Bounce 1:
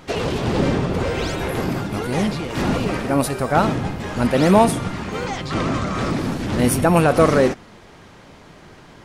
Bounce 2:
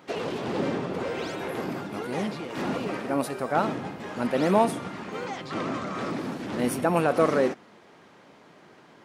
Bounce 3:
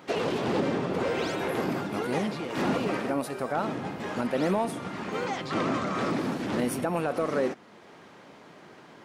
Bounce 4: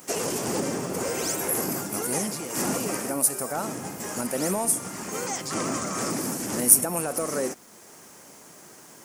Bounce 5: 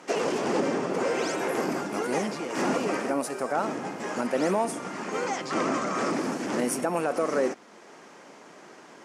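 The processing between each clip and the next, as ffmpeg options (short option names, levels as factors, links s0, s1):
-af "highpass=210,equalizer=f=9700:w=0.31:g=-5.5,volume=0.473"
-filter_complex "[0:a]asplit=2[s0][s1];[s1]asoftclip=type=tanh:threshold=0.15,volume=0.376[s2];[s0][s2]amix=inputs=2:normalize=0,alimiter=limit=0.141:level=0:latency=1:release=453"
-af "aexciter=amount=14.3:drive=5.9:freq=5700,acrusher=bits=7:mix=0:aa=0.5,volume=0.841"
-af "highpass=230,lowpass=3300,volume=1.5"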